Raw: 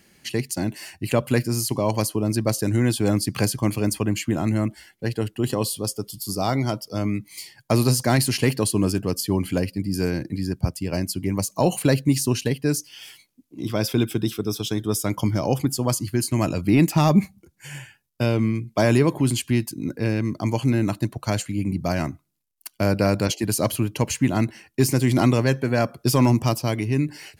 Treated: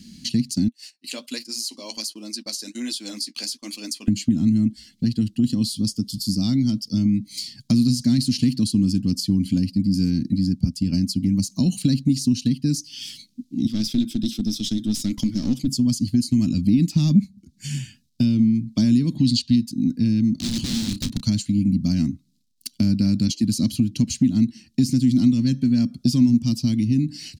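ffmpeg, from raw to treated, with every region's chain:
ffmpeg -i in.wav -filter_complex "[0:a]asettb=1/sr,asplit=3[link_01][link_02][link_03];[link_01]atrim=end=0.684[link_04];[link_02]atrim=start=0.68:end=4.08,asetpts=PTS-STARTPTS,afade=type=in:duration=0.004:curve=qsin,afade=type=out:start_time=3.396:duration=0.004:curve=qsin,highpass=frequency=480:width=0.5412,highpass=frequency=480:width=1.3066,agate=range=-20dB:threshold=-39dB:ratio=16:release=100:detection=peak,flanger=delay=5.7:depth=6:regen=-35:speed=1.3:shape=sinusoidal[link_05];[link_03]atrim=start=4.076[link_06];[link_04][link_05]acrossfade=duration=0.004:curve1=hsin:curve2=qsin[link_07];[link_07][link_06]acrossfade=duration=0.004:curve1=qsin:curve2=hsin,asettb=1/sr,asplit=3[link_08][link_09][link_10];[link_08]atrim=end=13.674[link_11];[link_09]atrim=start=13.67:end=15.68,asetpts=PTS-STARTPTS,afade=type=in:duration=0.004:curve=qsin,afade=type=out:start_time=2.006:duration=0.004:curve=qsin,highpass=250,aeval=exprs='clip(val(0),-1,0.0224)':channel_layout=same[link_12];[link_10]atrim=start=15.676[link_13];[link_11][link_12]acrossfade=duration=0.004:curve1=hsin:curve2=qsin[link_14];[link_14][link_13]acrossfade=duration=0.004:curve1=qsin:curve2=hsin,asettb=1/sr,asplit=3[link_15][link_16][link_17];[link_15]atrim=end=19.164[link_18];[link_16]atrim=start=19.16:end=19.56,asetpts=PTS-STARTPTS,afade=type=in:duration=0.004:curve=qsin,afade=type=out:start_time=0.396:duration=0.004:curve=qsin,equalizer=frequency=4300:width_type=o:width=0.99:gain=14.5,aecho=1:1:1.1:0.39,atrim=end_sample=17640,adynamicsmooth=sensitivity=4.5:basefreq=5100[link_19];[link_17]atrim=start=19.556[link_20];[link_18][link_19]acrossfade=duration=0.004:curve1=hsin:curve2=qsin[link_21];[link_21][link_20]acrossfade=duration=0.004:curve1=qsin:curve2=hsin,asettb=1/sr,asplit=3[link_22][link_23][link_24];[link_22]atrim=end=20.334[link_25];[link_23]atrim=start=20.33:end=21.22,asetpts=PTS-STARTPTS,afade=type=in:duration=0.004:curve=qsin,afade=type=out:start_time=0.886:duration=0.004:curve=qsin,aeval=exprs='(mod(13.3*val(0)+1,2)-1)/13.3':channel_layout=same,asplit=2[link_26][link_27];[link_27]adelay=31,volume=-12.5dB[link_28];[link_26][link_28]amix=inputs=2:normalize=0,atrim=end_sample=39249[link_29];[link_24]atrim=start=21.216[link_30];[link_25][link_29]acrossfade=duration=0.004:curve1=hsin:curve2=qsin[link_31];[link_31][link_30]acrossfade=duration=0.004:curve1=qsin:curve2=hsin,firequalizer=gain_entry='entry(130,0);entry(240,13);entry(390,-16);entry(860,-19);entry(4000,11);entry(12000,-5)':delay=0.05:min_phase=1,acompressor=threshold=-32dB:ratio=2.5,lowshelf=frequency=410:gain=8,volume=3.5dB" out.wav

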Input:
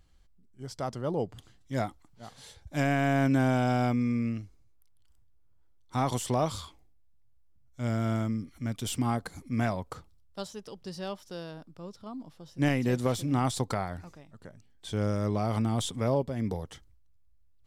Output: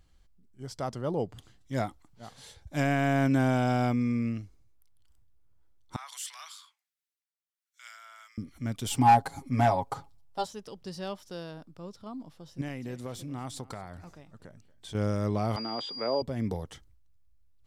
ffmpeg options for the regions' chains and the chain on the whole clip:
ffmpeg -i in.wav -filter_complex "[0:a]asettb=1/sr,asplit=3[link_01][link_02][link_03];[link_01]atrim=end=5.964[link_04];[link_02]atrim=start=5.96:end=8.38,asetpts=PTS-STARTPTS,afade=type=in:duration=0.004:curve=qsin,afade=type=out:start_time=2.416:duration=0.004:curve=qsin,highpass=frequency=1400:width=0.5412,highpass=frequency=1400:width=1.3066,acrossover=split=1100[link_05][link_06];[link_05]aeval=exprs='val(0)*(1-0.7/2+0.7/2*cos(2*PI*1.4*n/s))':channel_layout=same[link_07];[link_06]aeval=exprs='val(0)*(1-0.7/2-0.7/2*cos(2*PI*1.4*n/s))':channel_layout=same[link_08];[link_07][link_08]amix=inputs=2:normalize=0[link_09];[link_03]atrim=start=8.376[link_10];[link_04][link_09]acrossfade=duration=0.004:curve1=hsin:curve2=qsin[link_11];[link_11][link_10]acrossfade=duration=0.004:curve1=qsin:curve2=hsin,asettb=1/sr,asplit=3[link_12][link_13][link_14];[link_12]atrim=end=8.904[link_15];[link_13]atrim=start=8.9:end=10.46,asetpts=PTS-STARTPTS,afade=type=in:duration=0.004:curve=qsin,afade=type=out:start_time=1.556:duration=0.004:curve=qsin,equalizer=frequency=820:width=3.6:gain=14.5,aecho=1:1:7.3:0.73,atrim=end_sample=68796,volume=13.5dB,asoftclip=hard,volume=-13.5dB[link_16];[link_14]atrim=start=10.456[link_17];[link_15][link_16]acrossfade=duration=0.004:curve1=hsin:curve2=qsin[link_18];[link_18][link_17]acrossfade=duration=0.004:curve1=qsin:curve2=hsin,asettb=1/sr,asplit=3[link_19][link_20][link_21];[link_19]atrim=end=12.614[link_22];[link_20]atrim=start=12.61:end=14.95,asetpts=PTS-STARTPTS,afade=type=in:duration=0.004:curve=qsin,afade=type=out:start_time=2.336:duration=0.004:curve=qsin,acompressor=threshold=-43dB:ratio=2:attack=3.2:release=140:knee=1:detection=peak,aecho=1:1:231:0.0891,atrim=end_sample=103194[link_23];[link_21]atrim=start=14.946[link_24];[link_22][link_23]acrossfade=duration=0.004:curve1=hsin:curve2=qsin[link_25];[link_25][link_24]acrossfade=duration=0.004:curve1=qsin:curve2=hsin,asettb=1/sr,asplit=3[link_26][link_27][link_28];[link_26]atrim=end=15.564[link_29];[link_27]atrim=start=15.56:end=16.22,asetpts=PTS-STARTPTS,afade=type=in:duration=0.004:curve=qsin,afade=type=out:start_time=0.656:duration=0.004:curve=qsin,acrossover=split=280 3400:gain=0.0891 1 0.0794[link_30][link_31][link_32];[link_30][link_31][link_32]amix=inputs=3:normalize=0,aeval=exprs='val(0)+0.0158*sin(2*PI*4800*n/s)':channel_layout=same,highpass=140,lowpass=6300[link_33];[link_28]atrim=start=16.216[link_34];[link_29][link_33]acrossfade=duration=0.004:curve1=hsin:curve2=qsin[link_35];[link_35][link_34]acrossfade=duration=0.004:curve1=qsin:curve2=hsin" out.wav

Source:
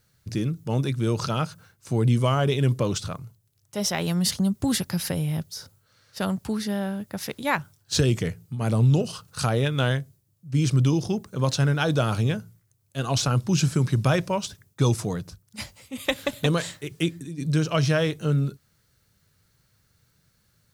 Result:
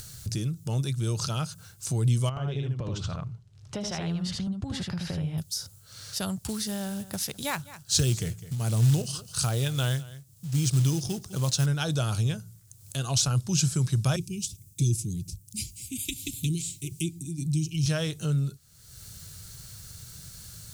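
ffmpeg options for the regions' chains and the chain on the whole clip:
ffmpeg -i in.wav -filter_complex "[0:a]asettb=1/sr,asplit=3[link_01][link_02][link_03];[link_01]atrim=end=2.294[link_04];[link_02]atrim=start=2.29:end=5.38,asetpts=PTS-STARTPTS,afade=type=in:duration=0.004:curve=qsin,afade=type=out:start_time=3.086:duration=0.004:curve=qsin,lowpass=2400,acompressor=threshold=-25dB:ratio=5:attack=3.2:release=140:knee=1:detection=peak,aecho=1:1:77:0.708,atrim=end_sample=136269[link_05];[link_03]atrim=start=5.376[link_06];[link_04][link_05]acrossfade=duration=0.004:curve1=hsin:curve2=qsin[link_07];[link_07][link_06]acrossfade=duration=0.004:curve1=qsin:curve2=hsin,asettb=1/sr,asplit=3[link_08][link_09][link_10];[link_08]atrim=end=6.444[link_11];[link_09]atrim=start=6.44:end=11.66,asetpts=PTS-STARTPTS,afade=type=in:duration=0.004:curve=qsin,afade=type=out:start_time=5.216:duration=0.004:curve=qsin,acrusher=bits=5:mode=log:mix=0:aa=0.000001,aecho=1:1:205:0.0944,atrim=end_sample=230202[link_12];[link_10]atrim=start=11.656[link_13];[link_11][link_12]acrossfade=duration=0.004:curve1=hsin:curve2=qsin[link_14];[link_14][link_13]acrossfade=duration=0.004:curve1=qsin:curve2=hsin,asettb=1/sr,asplit=3[link_15][link_16][link_17];[link_15]atrim=end=14.164[link_18];[link_16]atrim=start=14.16:end=17.86,asetpts=PTS-STARTPTS,afade=type=in:duration=0.004:curve=qsin,afade=type=out:start_time=3.696:duration=0.004:curve=qsin,asuperstop=centerf=930:order=20:qfactor=0.5,equalizer=frequency=3700:width=0.96:gain=-8[link_19];[link_17]atrim=start=17.856[link_20];[link_18][link_19]acrossfade=duration=0.004:curve1=hsin:curve2=qsin[link_21];[link_21][link_20]acrossfade=duration=0.004:curve1=qsin:curve2=hsin,equalizer=frequency=250:width_type=o:width=1:gain=-9,equalizer=frequency=500:width_type=o:width=1:gain=-7,equalizer=frequency=1000:width_type=o:width=1:gain=-6,equalizer=frequency=2000:width_type=o:width=1:gain=-8,equalizer=frequency=8000:width_type=o:width=1:gain=6,acompressor=mode=upward:threshold=-26dB:ratio=2.5" out.wav

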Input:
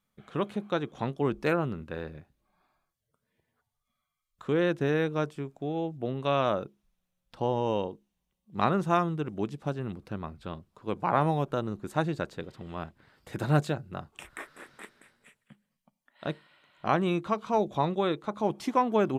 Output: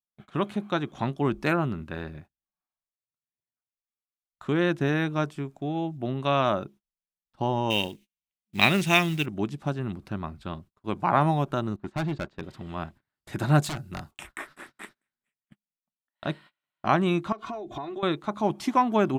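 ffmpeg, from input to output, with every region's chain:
ffmpeg -i in.wav -filter_complex "[0:a]asettb=1/sr,asplit=3[link_01][link_02][link_03];[link_01]atrim=end=7.704[link_04];[link_02]atrim=start=7.7:end=9.26,asetpts=PTS-STARTPTS,afade=type=in:duration=0.004:curve=qsin,afade=type=out:start_time=1.556:duration=0.004:curve=qsin,highshelf=frequency=1700:width_type=q:width=3:gain=10.5,acrusher=bits=5:mode=log:mix=0:aa=0.000001[link_05];[link_03]atrim=start=9.256[link_06];[link_04][link_05]acrossfade=duration=0.004:curve1=hsin:curve2=qsin[link_07];[link_07][link_06]acrossfade=duration=0.004:curve1=qsin:curve2=hsin,asettb=1/sr,asplit=3[link_08][link_09][link_10];[link_08]atrim=end=11.764[link_11];[link_09]atrim=start=11.76:end=12.43,asetpts=PTS-STARTPTS,afade=type=in:duration=0.004:curve=qsin,afade=type=out:start_time=0.666:duration=0.004:curve=qsin,lowpass=3300,agate=range=-13dB:threshold=-42dB:ratio=16:release=100:detection=peak,asoftclip=type=hard:threshold=-28dB[link_12];[link_10]atrim=start=12.426[link_13];[link_11][link_12]acrossfade=duration=0.004:curve1=hsin:curve2=qsin[link_14];[link_14][link_13]acrossfade=duration=0.004:curve1=qsin:curve2=hsin,asettb=1/sr,asplit=3[link_15][link_16][link_17];[link_15]atrim=end=13.624[link_18];[link_16]atrim=start=13.62:end=14.11,asetpts=PTS-STARTPTS,afade=type=in:duration=0.004:curve=qsin,afade=type=out:start_time=0.486:duration=0.004:curve=qsin,highshelf=frequency=4600:gain=10.5,aeval=exprs='0.0316*(abs(mod(val(0)/0.0316+3,4)-2)-1)':channel_layout=same[link_19];[link_17]atrim=start=14.106[link_20];[link_18][link_19]acrossfade=duration=0.004:curve1=hsin:curve2=qsin[link_21];[link_21][link_20]acrossfade=duration=0.004:curve1=qsin:curve2=hsin,asettb=1/sr,asplit=3[link_22][link_23][link_24];[link_22]atrim=end=17.324[link_25];[link_23]atrim=start=17.32:end=18.03,asetpts=PTS-STARTPTS,afade=type=in:duration=0.004:curve=qsin,afade=type=out:start_time=0.706:duration=0.004:curve=qsin,aecho=1:1:2.8:0.95,atrim=end_sample=31311,acompressor=threshold=-34dB:ratio=12:attack=3.2:release=140:knee=1:detection=peak,aemphasis=mode=reproduction:type=cd[link_26];[link_24]atrim=start=18.026[link_27];[link_25][link_26]acrossfade=duration=0.004:curve1=hsin:curve2=qsin[link_28];[link_28][link_27]acrossfade=duration=0.004:curve1=qsin:curve2=hsin,agate=range=-31dB:threshold=-50dB:ratio=16:detection=peak,equalizer=frequency=480:width_type=o:width=0.21:gain=-14.5,volume=4dB" out.wav

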